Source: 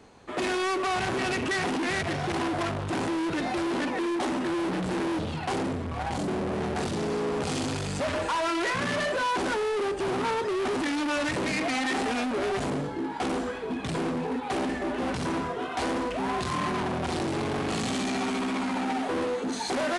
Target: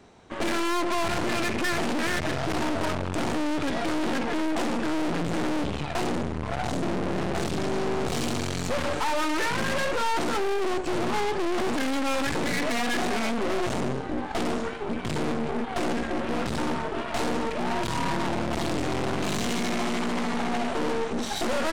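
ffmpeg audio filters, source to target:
-af "aeval=exprs='0.0841*(cos(1*acos(clip(val(0)/0.0841,-1,1)))-cos(1*PI/2))+0.0237*(cos(4*acos(clip(val(0)/0.0841,-1,1)))-cos(4*PI/2))':c=same,asetrate=40572,aresample=44100"

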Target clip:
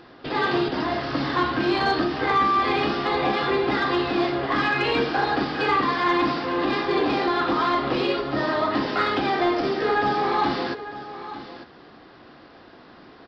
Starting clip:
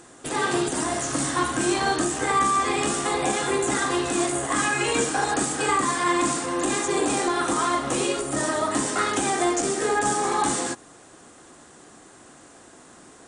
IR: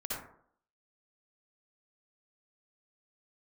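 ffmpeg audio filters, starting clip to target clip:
-af "aresample=11025,aresample=44100,asoftclip=type=tanh:threshold=0.237,aecho=1:1:899:0.211,volume=1.26"

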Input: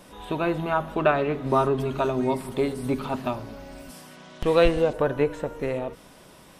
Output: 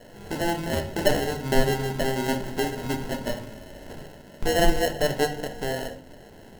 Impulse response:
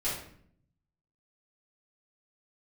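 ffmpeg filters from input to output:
-filter_complex "[0:a]aemphasis=mode=production:type=50fm,acrusher=samples=37:mix=1:aa=0.000001,asplit=2[s0][s1];[1:a]atrim=start_sample=2205,asetrate=61740,aresample=44100[s2];[s1][s2]afir=irnorm=-1:irlink=0,volume=0.376[s3];[s0][s3]amix=inputs=2:normalize=0,volume=0.668"

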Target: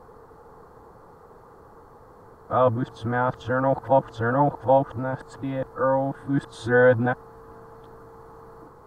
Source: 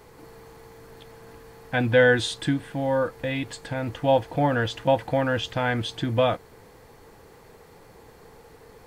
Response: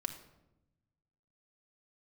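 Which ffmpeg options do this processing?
-af "areverse,highshelf=f=1700:t=q:w=3:g=-11"

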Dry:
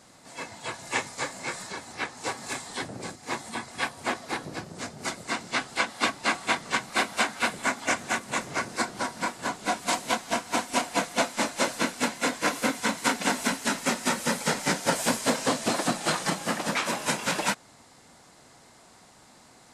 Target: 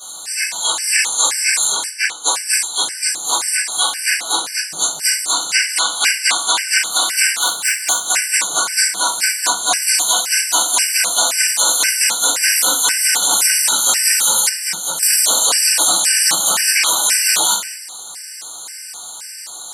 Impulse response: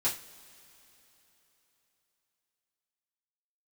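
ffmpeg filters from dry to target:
-filter_complex "[0:a]asplit=2[s0][s1];[s1]acompressor=threshold=0.0141:ratio=20,volume=0.841[s2];[s0][s2]amix=inputs=2:normalize=0,asettb=1/sr,asplit=3[s3][s4][s5];[s3]atrim=end=1.874[s6];[s4]atrim=start=1.87:end=2.83,asetpts=PTS-STARTPTS,afade=t=in:d=0.004:c=qsin,afade=t=out:st=0.956:d=0.004:c=qsin,agate=range=0.0224:threshold=0.0355:ratio=3:detection=peak[s7];[s5]atrim=start=2.826[s8];[s6][s7]acrossfade=d=0.004:c1=hsin:c2=qsin[s9];[s9][s8]acrossfade=d=0.004:c1=qsin:c2=hsin,asettb=1/sr,asplit=3[s10][s11][s12];[s10]atrim=end=7.414[s13];[s11]atrim=start=7.41:end=8.05,asetpts=PTS-STARTPTS,afade=t=in:d=0.004:c=qsin,afade=t=out:st=0.636:d=0.004:c=qsin,aeval=exprs='(tanh(8.91*val(0)+0.7)-tanh(0.7))/8.91':c=same[s14];[s12]atrim=start=8.046[s15];[s13][s14]acrossfade=d=0.004:c1=hsin:c2=qsin[s16];[s16][s15]acrossfade=d=0.004:c1=qsin:c2=hsin,aderivative,bandreject=f=60:t=h:w=6,bandreject=f=120:t=h:w=6,bandreject=f=180:t=h:w=6,bandreject=f=240:t=h:w=6,bandreject=f=300:t=h:w=6[s17];[1:a]atrim=start_sample=2205,afade=t=out:st=0.32:d=0.01,atrim=end_sample=14553[s18];[s17][s18]afir=irnorm=-1:irlink=0,asettb=1/sr,asplit=3[s19][s20][s21];[s19]atrim=end=14.494[s22];[s20]atrim=start=14.49:end=15.03,asetpts=PTS-STARTPTS,afade=t=in:d=0.004:c=qsin,afade=t=out:st=0.536:d=0.004:c=qsin,acrossover=split=140[s23][s24];[s24]acompressor=threshold=0.01:ratio=3[s25];[s23][s25]amix=inputs=2:normalize=0[s26];[s21]atrim=start=15.026[s27];[s22][s26]acrossfade=d=0.004:c1=hsin:c2=qsin[s28];[s28][s27]acrossfade=d=0.004:c1=qsin:c2=hsin,alimiter=level_in=10:limit=0.891:release=50:level=0:latency=1,afftfilt=real='re*gt(sin(2*PI*1.9*pts/sr)*(1-2*mod(floor(b*sr/1024/1500),2)),0)':imag='im*gt(sin(2*PI*1.9*pts/sr)*(1-2*mod(floor(b*sr/1024/1500),2)),0)':win_size=1024:overlap=0.75"

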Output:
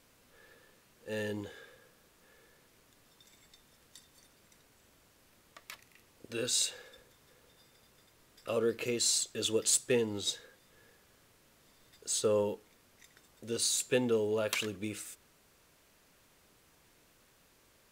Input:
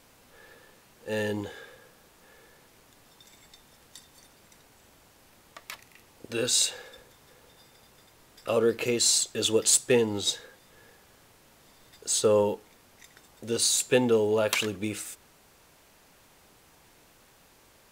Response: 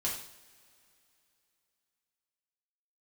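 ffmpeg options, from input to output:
-af "equalizer=f=820:w=2.9:g=-5,volume=0.473"

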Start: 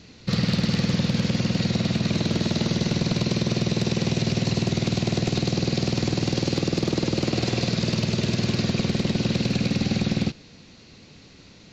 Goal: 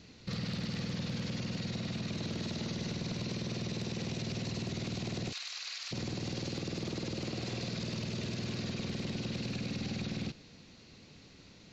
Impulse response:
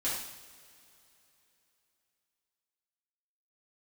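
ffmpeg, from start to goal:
-filter_complex "[0:a]asplit=3[s0][s1][s2];[s0]afade=t=out:st=5.31:d=0.02[s3];[s1]highpass=f=1200:w=0.5412,highpass=f=1200:w=1.3066,afade=t=in:st=5.31:d=0.02,afade=t=out:st=5.91:d=0.02[s4];[s2]afade=t=in:st=5.91:d=0.02[s5];[s3][s4][s5]amix=inputs=3:normalize=0,alimiter=limit=0.0668:level=0:latency=1:release=27,volume=0.447"

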